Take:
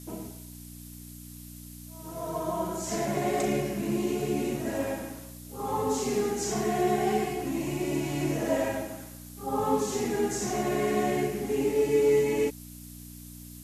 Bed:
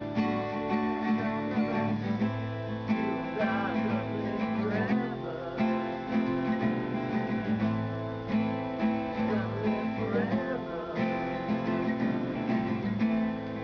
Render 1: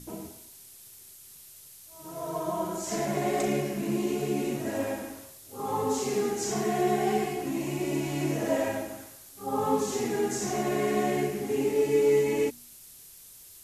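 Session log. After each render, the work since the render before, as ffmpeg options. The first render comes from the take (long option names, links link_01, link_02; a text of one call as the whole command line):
ffmpeg -i in.wav -af "bandreject=frequency=60:width_type=h:width=4,bandreject=frequency=120:width_type=h:width=4,bandreject=frequency=180:width_type=h:width=4,bandreject=frequency=240:width_type=h:width=4,bandreject=frequency=300:width_type=h:width=4" out.wav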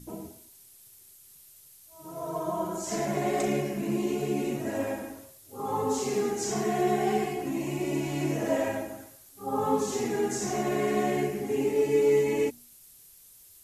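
ffmpeg -i in.wav -af "afftdn=noise_reduction=6:noise_floor=-50" out.wav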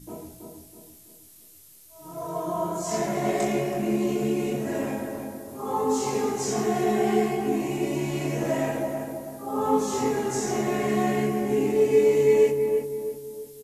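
ffmpeg -i in.wav -filter_complex "[0:a]asplit=2[link_01][link_02];[link_02]adelay=23,volume=-2.5dB[link_03];[link_01][link_03]amix=inputs=2:normalize=0,asplit=2[link_04][link_05];[link_05]adelay=326,lowpass=frequency=1200:poles=1,volume=-4dB,asplit=2[link_06][link_07];[link_07]adelay=326,lowpass=frequency=1200:poles=1,volume=0.47,asplit=2[link_08][link_09];[link_09]adelay=326,lowpass=frequency=1200:poles=1,volume=0.47,asplit=2[link_10][link_11];[link_11]adelay=326,lowpass=frequency=1200:poles=1,volume=0.47,asplit=2[link_12][link_13];[link_13]adelay=326,lowpass=frequency=1200:poles=1,volume=0.47,asplit=2[link_14][link_15];[link_15]adelay=326,lowpass=frequency=1200:poles=1,volume=0.47[link_16];[link_06][link_08][link_10][link_12][link_14][link_16]amix=inputs=6:normalize=0[link_17];[link_04][link_17]amix=inputs=2:normalize=0" out.wav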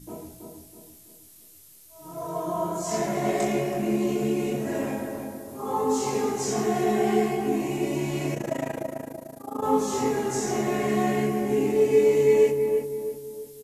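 ffmpeg -i in.wav -filter_complex "[0:a]asplit=3[link_01][link_02][link_03];[link_01]afade=type=out:start_time=8.34:duration=0.02[link_04];[link_02]tremolo=f=27:d=0.919,afade=type=in:start_time=8.34:duration=0.02,afade=type=out:start_time=9.62:duration=0.02[link_05];[link_03]afade=type=in:start_time=9.62:duration=0.02[link_06];[link_04][link_05][link_06]amix=inputs=3:normalize=0" out.wav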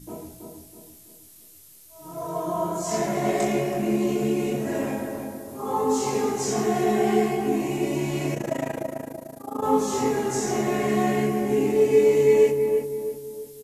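ffmpeg -i in.wav -af "volume=1.5dB" out.wav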